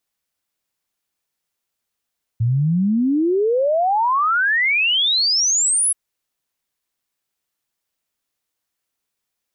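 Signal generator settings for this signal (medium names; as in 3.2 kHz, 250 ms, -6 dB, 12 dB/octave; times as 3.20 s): log sweep 110 Hz -> 11 kHz 3.53 s -14.5 dBFS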